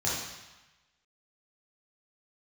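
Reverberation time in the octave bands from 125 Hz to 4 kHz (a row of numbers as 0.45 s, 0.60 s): 1.1 s, 1.0 s, 0.95 s, 1.2 s, 1.2 s, 1.1 s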